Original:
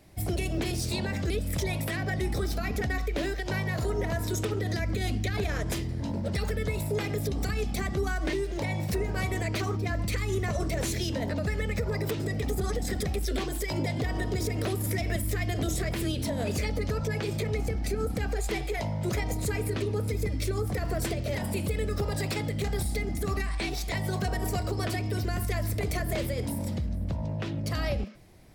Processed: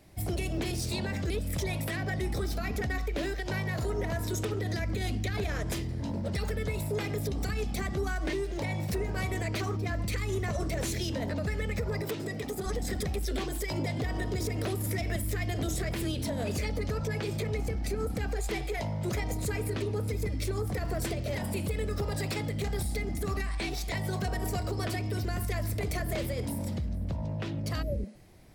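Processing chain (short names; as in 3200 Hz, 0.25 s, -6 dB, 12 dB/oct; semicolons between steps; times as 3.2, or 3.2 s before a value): in parallel at -4.5 dB: soft clip -28.5 dBFS, distortion -13 dB; 12.01–12.66 on the sum: Bessel high-pass 170 Hz, order 2; 27.85–28.2 spectral repair 630–11000 Hz after; gain -5 dB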